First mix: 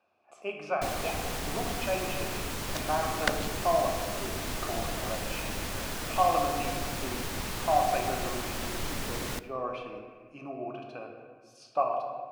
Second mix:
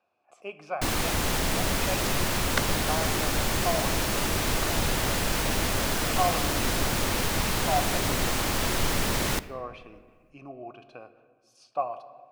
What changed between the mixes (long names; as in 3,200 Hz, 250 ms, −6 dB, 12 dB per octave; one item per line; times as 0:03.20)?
speech: send −11.5 dB
first sound +8.5 dB
second sound: entry −0.70 s